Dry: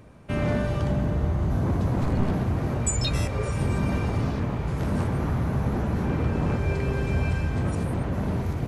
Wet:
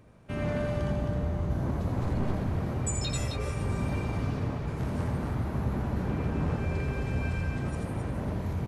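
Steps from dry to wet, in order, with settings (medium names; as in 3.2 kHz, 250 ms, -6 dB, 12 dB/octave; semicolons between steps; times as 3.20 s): loudspeakers at several distances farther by 29 m -6 dB, 91 m -6 dB; trim -7 dB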